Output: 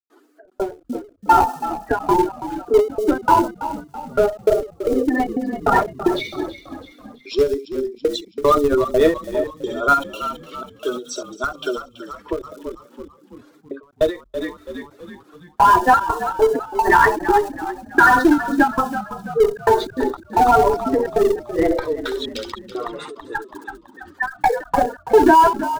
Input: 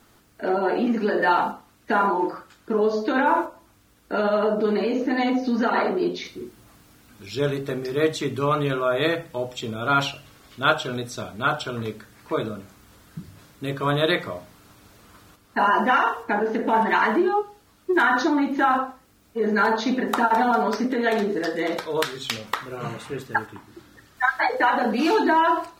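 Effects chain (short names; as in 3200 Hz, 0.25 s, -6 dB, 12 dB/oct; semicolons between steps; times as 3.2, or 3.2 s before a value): spectral contrast raised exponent 2; steep high-pass 260 Hz 96 dB/oct; bell 400 Hz +4 dB 0.29 oct; in parallel at -9 dB: Schmitt trigger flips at -18 dBFS; on the sum: thin delay 66 ms, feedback 68%, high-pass 5400 Hz, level -4.5 dB; step gate ".xxxx.xx.xx." 151 bpm -60 dB; frequency-shifting echo 0.33 s, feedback 49%, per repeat -44 Hz, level -12.5 dB; ending taper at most 180 dB/s; gain +7 dB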